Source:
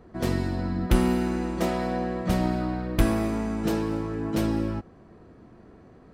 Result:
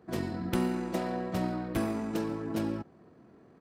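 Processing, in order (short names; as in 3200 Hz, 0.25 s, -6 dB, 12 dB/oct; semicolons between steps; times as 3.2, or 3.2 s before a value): HPF 120 Hz 12 dB/oct; tempo 1.7×; gain -5 dB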